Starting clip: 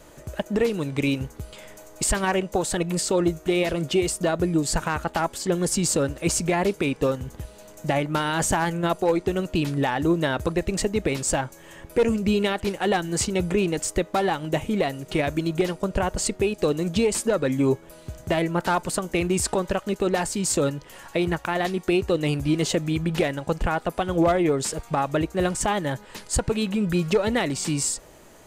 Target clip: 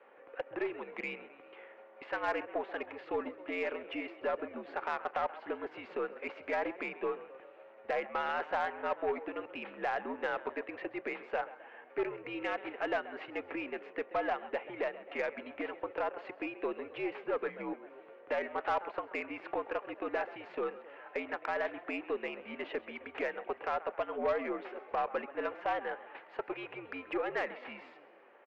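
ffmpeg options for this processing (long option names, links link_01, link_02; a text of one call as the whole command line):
ffmpeg -i in.wav -filter_complex "[0:a]asplit=6[link_01][link_02][link_03][link_04][link_05][link_06];[link_02]adelay=132,afreqshift=42,volume=-17.5dB[link_07];[link_03]adelay=264,afreqshift=84,volume=-22.4dB[link_08];[link_04]adelay=396,afreqshift=126,volume=-27.3dB[link_09];[link_05]adelay=528,afreqshift=168,volume=-32.1dB[link_10];[link_06]adelay=660,afreqshift=210,volume=-37dB[link_11];[link_01][link_07][link_08][link_09][link_10][link_11]amix=inputs=6:normalize=0,highpass=frequency=530:width_type=q:width=0.5412,highpass=frequency=530:width_type=q:width=1.307,lowpass=frequency=2600:width_type=q:width=0.5176,lowpass=frequency=2600:width_type=q:width=0.7071,lowpass=frequency=2600:width_type=q:width=1.932,afreqshift=-82,aeval=exprs='0.251*(cos(1*acos(clip(val(0)/0.251,-1,1)))-cos(1*PI/2))+0.0178*(cos(5*acos(clip(val(0)/0.251,-1,1)))-cos(5*PI/2))+0.00316*(cos(8*acos(clip(val(0)/0.251,-1,1)))-cos(8*PI/2))':channel_layout=same,volume=-9dB" out.wav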